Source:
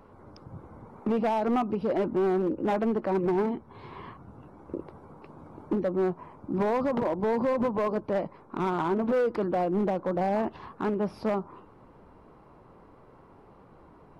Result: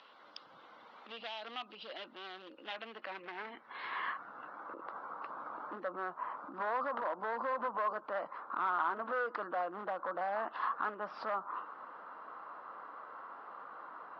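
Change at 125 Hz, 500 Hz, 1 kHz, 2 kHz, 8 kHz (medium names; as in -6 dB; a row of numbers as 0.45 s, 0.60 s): under -25 dB, -14.5 dB, -4.0 dB, +1.0 dB, no reading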